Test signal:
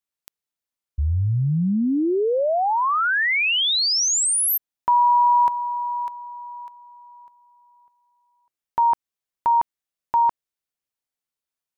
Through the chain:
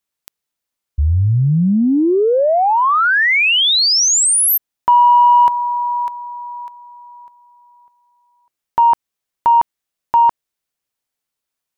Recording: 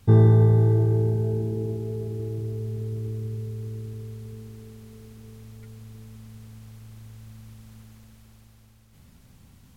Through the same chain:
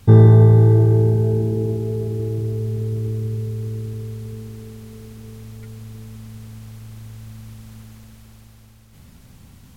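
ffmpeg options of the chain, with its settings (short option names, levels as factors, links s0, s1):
-af "acontrast=29,volume=1.26"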